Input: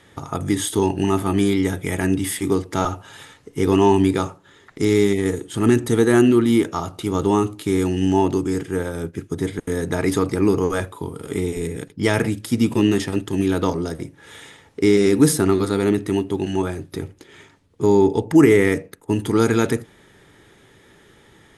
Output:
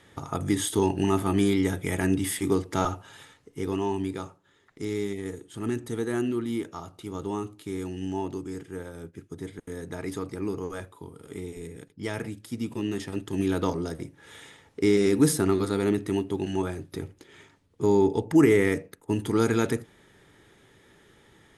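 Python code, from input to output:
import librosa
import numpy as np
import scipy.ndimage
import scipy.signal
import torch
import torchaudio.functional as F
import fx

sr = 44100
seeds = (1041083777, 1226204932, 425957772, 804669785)

y = fx.gain(x, sr, db=fx.line((2.86, -4.5), (3.85, -13.5), (12.82, -13.5), (13.44, -6.0)))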